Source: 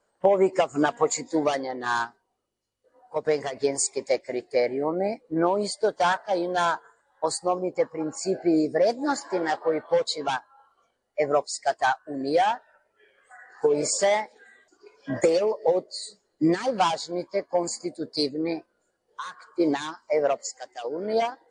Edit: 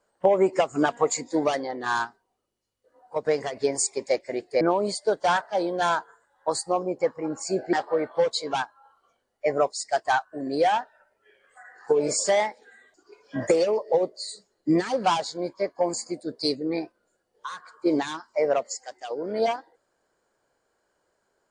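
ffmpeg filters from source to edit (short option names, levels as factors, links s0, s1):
-filter_complex "[0:a]asplit=3[s0][s1][s2];[s0]atrim=end=4.612[s3];[s1]atrim=start=5.368:end=8.492[s4];[s2]atrim=start=9.468[s5];[s3][s4]acrossfade=d=0.004:c1=hsin:c2=hsin[s6];[s6][s5]acrossfade=d=0.004:c1=hsin:c2=hsin"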